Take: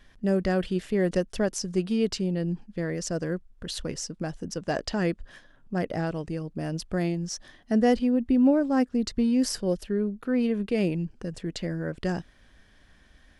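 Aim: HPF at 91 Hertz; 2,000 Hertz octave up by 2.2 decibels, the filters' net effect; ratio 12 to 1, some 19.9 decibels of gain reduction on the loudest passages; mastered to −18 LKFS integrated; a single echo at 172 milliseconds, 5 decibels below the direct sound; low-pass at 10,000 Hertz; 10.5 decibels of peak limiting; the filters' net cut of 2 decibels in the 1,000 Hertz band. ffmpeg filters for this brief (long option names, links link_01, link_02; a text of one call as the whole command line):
ffmpeg -i in.wav -af "highpass=91,lowpass=10000,equalizer=frequency=1000:width_type=o:gain=-4,equalizer=frequency=2000:width_type=o:gain=4,acompressor=threshold=-38dB:ratio=12,alimiter=level_in=11.5dB:limit=-24dB:level=0:latency=1,volume=-11.5dB,aecho=1:1:172:0.562,volume=25.5dB" out.wav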